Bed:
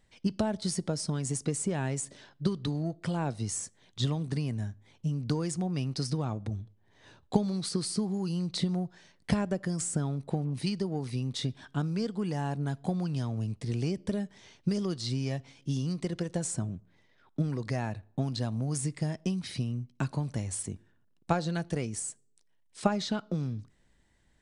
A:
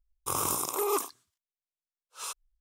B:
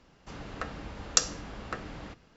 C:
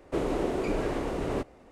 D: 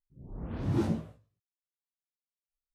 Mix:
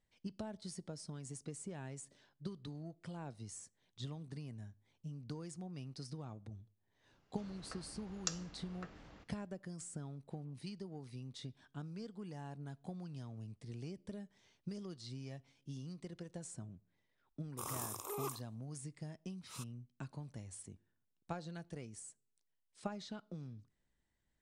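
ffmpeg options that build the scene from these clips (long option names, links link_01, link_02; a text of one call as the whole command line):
ffmpeg -i bed.wav -i cue0.wav -i cue1.wav -filter_complex "[0:a]volume=-15.5dB[link_01];[2:a]atrim=end=2.36,asetpts=PTS-STARTPTS,volume=-15dB,afade=type=in:duration=0.004:curve=hsin,afade=type=out:start_time=2.356:duration=0.004:curve=hsin,adelay=7100[link_02];[1:a]atrim=end=2.6,asetpts=PTS-STARTPTS,volume=-13.5dB,afade=type=in:duration=0.004:curve=hsin,afade=type=out:start_time=2.596:duration=0.004:curve=hsin,adelay=17310[link_03];[link_01][link_02][link_03]amix=inputs=3:normalize=0" out.wav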